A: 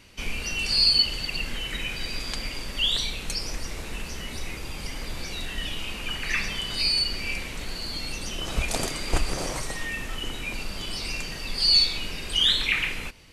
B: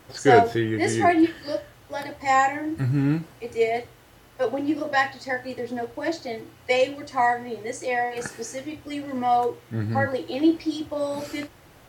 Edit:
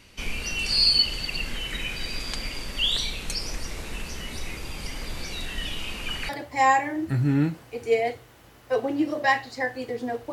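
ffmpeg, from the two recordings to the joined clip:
-filter_complex "[0:a]apad=whole_dur=10.32,atrim=end=10.32,atrim=end=6.292[a];[1:a]atrim=start=1.978:end=6.01[b];[a][b]acrossfade=d=0.004:c1=hsin:c2=hsin"

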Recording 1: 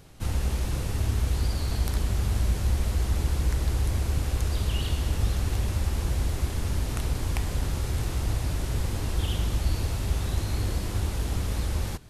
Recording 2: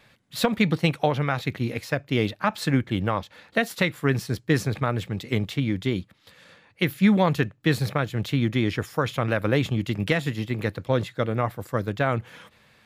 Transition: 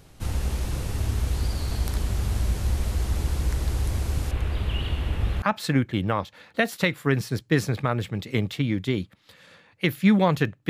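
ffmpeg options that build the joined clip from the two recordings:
-filter_complex "[0:a]asettb=1/sr,asplit=3[a][b][c];[a]atrim=end=4.314[d];[b]atrim=start=4.31:end=5.42,asetpts=PTS-STARTPTS,afade=t=in:d=0.004:c=qsin,afade=t=out:st=1.106:d=0.004:c=qsin,highshelf=f=4k:t=q:w=1.5:g=-11.5[e];[c]atrim=start=5.416[f];[d][e]acrossfade=d=0.004:c1=hsin:c2=qsin[g];[g][f]acrossfade=d=0.004:c1=qsin:c2=hsin,apad=whole_dur=10.69,atrim=end=10.69,atrim=end=5.422[h];[1:a]atrim=start=2.398:end=7.67[i];[h][i]acrossfade=d=0.004:c1=hsin:c2=hsin"

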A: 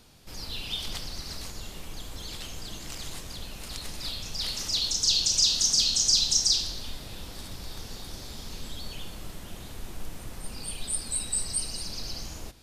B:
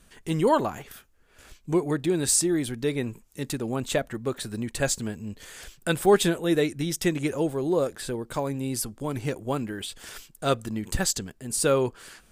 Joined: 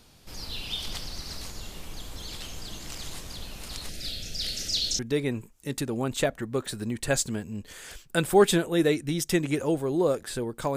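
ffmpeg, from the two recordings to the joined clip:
-filter_complex "[0:a]asettb=1/sr,asplit=3[a][b][c];[a]atrim=end=3.894[d];[b]atrim=start=3.89:end=4.99,asetpts=PTS-STARTPTS,afade=t=in:d=0.004:c=qsin,afade=t=out:st=1.096:d=0.004:c=qsin,asuperstop=centerf=1000:order=4:qfactor=1.3[e];[c]atrim=start=4.986[f];[d][e]acrossfade=d=0.004:c1=hsin:c2=qsin[g];[g][f]acrossfade=d=0.004:c1=qsin:c2=hsin,apad=whole_dur=10.76,atrim=end=10.76,atrim=end=4.992[h];[1:a]atrim=start=2.708:end=8.48[i];[h][i]acrossfade=d=0.004:c1=hsin:c2=hsin"

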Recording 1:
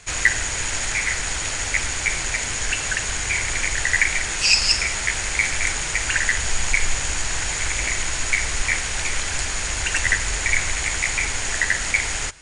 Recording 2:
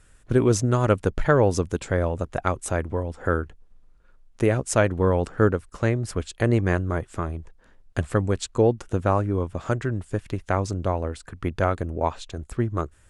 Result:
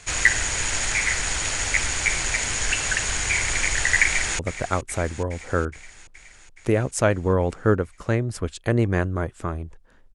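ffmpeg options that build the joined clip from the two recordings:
-filter_complex "[0:a]apad=whole_dur=10.14,atrim=end=10.14,atrim=end=4.392[a];[1:a]atrim=start=2.128:end=7.88[b];[a][b]acrossfade=d=0.004:c1=hsin:c2=hsin,asplit=2[c][d];[d]afade=t=in:st=4.04:d=0.01,afade=t=out:st=4.39:d=0.01,aecho=0:1:420|840|1260|1680|2100|2520|2940|3360|3780:0.223872|0.15671|0.109697|0.0767881|0.0537517|0.0376262|0.0263383|0.0184368|0.0129058[e];[c][e]amix=inputs=2:normalize=0"

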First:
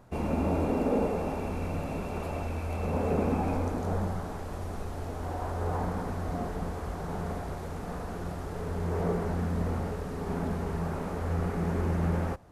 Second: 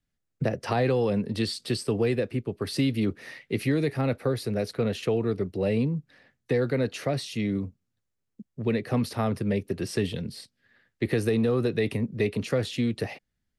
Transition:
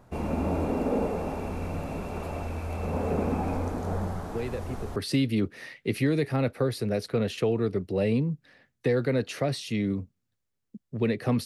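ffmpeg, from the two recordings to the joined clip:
-filter_complex "[1:a]asplit=2[a][b];[0:a]apad=whole_dur=11.45,atrim=end=11.45,atrim=end=4.962[c];[b]atrim=start=2.608:end=9.1[d];[a]atrim=start=1.98:end=2.61,asetpts=PTS-STARTPTS,volume=-8dB,afade=t=in:d=0.004:c=hsin,afade=t=out:st=0.626:d=0.004:c=hsin,adelay=190953S[e];[c][d]acrossfade=d=0.004:c1=hsin:c2=hsin[f];[f][e]amix=inputs=2:normalize=0"

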